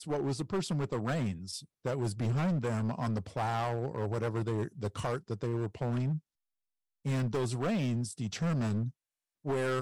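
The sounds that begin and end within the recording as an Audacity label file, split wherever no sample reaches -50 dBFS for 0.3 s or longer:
7.050000	8.910000	sound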